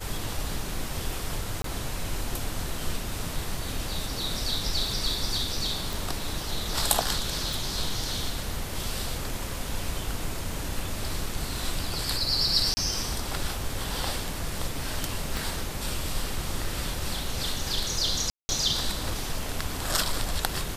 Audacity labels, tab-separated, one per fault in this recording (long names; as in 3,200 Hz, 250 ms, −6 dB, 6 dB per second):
1.620000	1.640000	drop-out 23 ms
5.930000	5.930000	click
7.530000	7.530000	click
12.740000	12.770000	drop-out 30 ms
15.370000	15.370000	click
18.300000	18.490000	drop-out 190 ms